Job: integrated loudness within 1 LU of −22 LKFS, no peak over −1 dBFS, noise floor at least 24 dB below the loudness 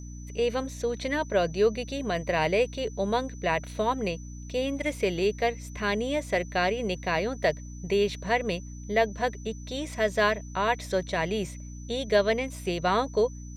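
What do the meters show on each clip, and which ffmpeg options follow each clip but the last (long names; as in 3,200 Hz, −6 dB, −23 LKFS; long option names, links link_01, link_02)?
mains hum 60 Hz; hum harmonics up to 300 Hz; level of the hum −38 dBFS; interfering tone 6,000 Hz; level of the tone −50 dBFS; integrated loudness −28.0 LKFS; sample peak −11.5 dBFS; target loudness −22.0 LKFS
→ -af "bandreject=frequency=60:width_type=h:width=4,bandreject=frequency=120:width_type=h:width=4,bandreject=frequency=180:width_type=h:width=4,bandreject=frequency=240:width_type=h:width=4,bandreject=frequency=300:width_type=h:width=4"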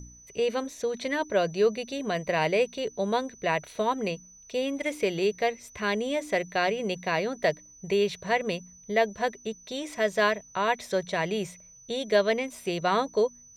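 mains hum none found; interfering tone 6,000 Hz; level of the tone −50 dBFS
→ -af "bandreject=frequency=6000:width=30"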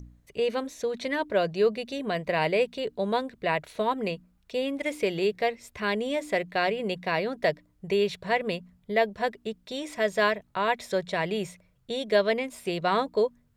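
interfering tone none found; integrated loudness −28.0 LKFS; sample peak −11.5 dBFS; target loudness −22.0 LKFS
→ -af "volume=6dB"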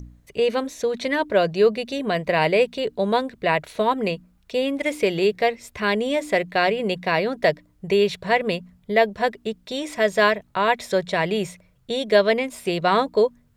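integrated loudness −22.0 LKFS; sample peak −5.5 dBFS; background noise floor −60 dBFS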